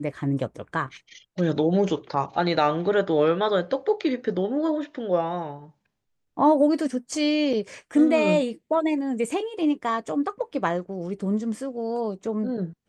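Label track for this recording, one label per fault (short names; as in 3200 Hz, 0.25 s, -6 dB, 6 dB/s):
7.530000	7.530000	gap 3.5 ms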